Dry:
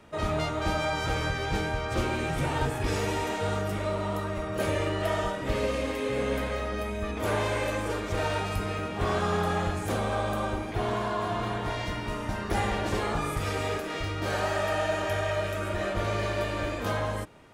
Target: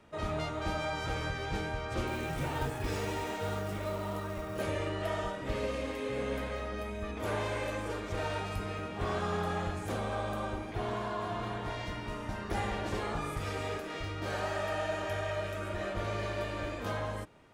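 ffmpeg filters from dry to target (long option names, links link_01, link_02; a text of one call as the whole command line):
ffmpeg -i in.wav -filter_complex "[0:a]equalizer=frequency=14000:width=0.44:gain=-3.5,asettb=1/sr,asplit=3[link_01][link_02][link_03];[link_01]atrim=end=2.074[link_04];[link_02]atrim=start=2.07:end=4.62,asetpts=PTS-STARTPTS,afade=type=in:duration=0.004:curve=qsin,afade=type=out:start_time=2.546:duration=0.004:curve=qsin,acrusher=bits=5:mode=log:mix=0:aa=0.000001[link_05];[link_03]atrim=start=4.616[link_06];[link_04][link_05]acrossfade=duration=0.004:curve1=hsin:curve2=qsin[link_07];[link_07][link_06]acrossfade=duration=0.004:curve1=qsin:curve2=hsin,volume=-6dB" out.wav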